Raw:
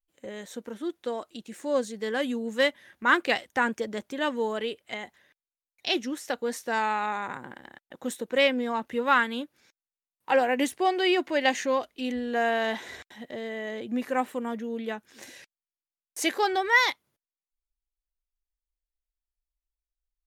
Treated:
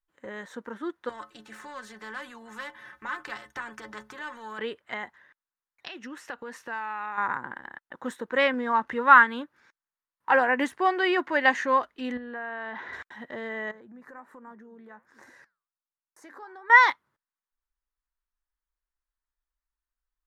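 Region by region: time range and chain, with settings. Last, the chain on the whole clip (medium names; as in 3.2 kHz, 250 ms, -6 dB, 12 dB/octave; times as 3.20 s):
1.09–4.59 s: compression 2:1, threshold -32 dBFS + inharmonic resonator 64 Hz, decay 0.28 s, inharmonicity 0.03 + spectrum-flattening compressor 2:1
5.87–7.18 s: peaking EQ 2.7 kHz +9 dB 0.27 oct + compression 5:1, threshold -36 dBFS
8.54–9.28 s: block-companded coder 7-bit + low-pass 9.3 kHz + upward compressor, threshold -30 dBFS
12.17–12.93 s: distance through air 180 m + compression 12:1, threshold -34 dBFS
13.71–16.70 s: peaking EQ 3 kHz -12 dB 0.91 oct + compression 4:1, threshold -42 dBFS + flange 1.3 Hz, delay 1.8 ms, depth 8.4 ms, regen -86%
whole clip: low-pass 2.9 kHz 6 dB/octave; high-order bell 1.3 kHz +10.5 dB 1.3 oct; trim -1.5 dB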